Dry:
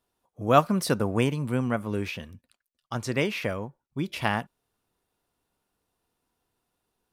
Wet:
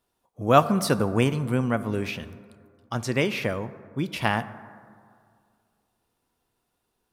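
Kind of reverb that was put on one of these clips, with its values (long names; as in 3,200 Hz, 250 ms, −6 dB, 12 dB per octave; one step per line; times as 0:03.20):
dense smooth reverb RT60 2.2 s, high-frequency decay 0.35×, DRR 14 dB
level +2 dB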